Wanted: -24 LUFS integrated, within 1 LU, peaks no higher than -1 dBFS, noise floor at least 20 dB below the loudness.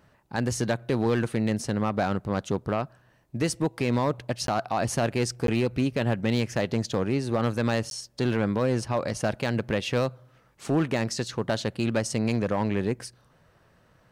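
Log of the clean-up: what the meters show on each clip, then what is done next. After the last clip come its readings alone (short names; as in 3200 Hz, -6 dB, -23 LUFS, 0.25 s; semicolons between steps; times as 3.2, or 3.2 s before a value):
clipped 1.1%; flat tops at -17.5 dBFS; dropouts 3; longest dropout 12 ms; loudness -27.5 LUFS; peak -17.5 dBFS; loudness target -24.0 LUFS
-> clip repair -17.5 dBFS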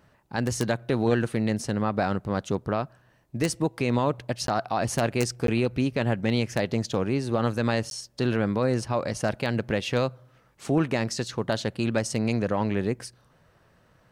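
clipped 0.0%; dropouts 3; longest dropout 12 ms
-> interpolate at 4.47/5.47/7.9, 12 ms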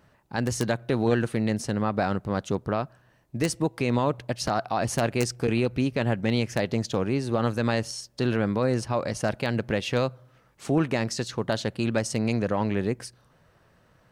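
dropouts 0; loudness -27.0 LUFS; peak -8.5 dBFS; loudness target -24.0 LUFS
-> gain +3 dB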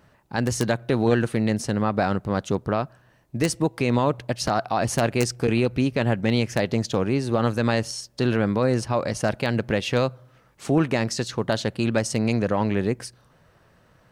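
loudness -24.0 LUFS; peak -5.5 dBFS; noise floor -59 dBFS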